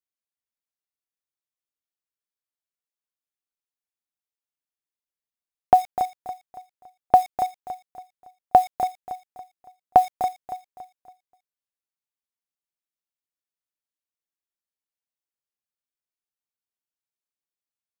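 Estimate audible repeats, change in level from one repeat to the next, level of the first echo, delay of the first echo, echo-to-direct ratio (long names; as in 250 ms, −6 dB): 3, −8.0 dB, −12.0 dB, 281 ms, −11.5 dB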